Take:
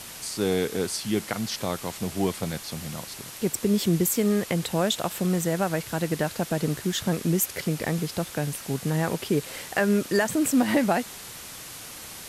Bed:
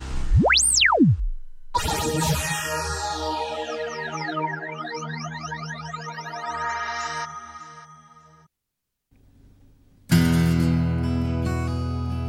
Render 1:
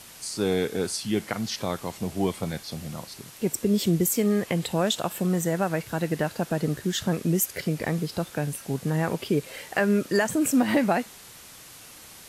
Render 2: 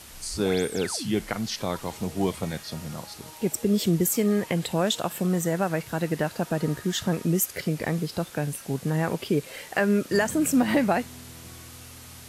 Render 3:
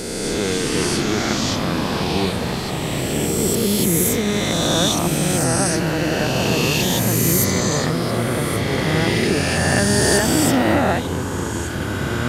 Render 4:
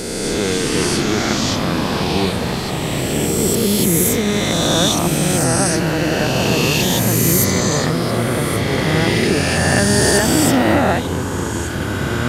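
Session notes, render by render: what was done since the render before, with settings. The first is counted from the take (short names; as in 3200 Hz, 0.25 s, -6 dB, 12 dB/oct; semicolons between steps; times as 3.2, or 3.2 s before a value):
noise print and reduce 6 dB
add bed -22 dB
spectral swells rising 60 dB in 2.72 s; echoes that change speed 0.246 s, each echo -5 st, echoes 3
gain +2.5 dB; limiter -1 dBFS, peak gain reduction 2 dB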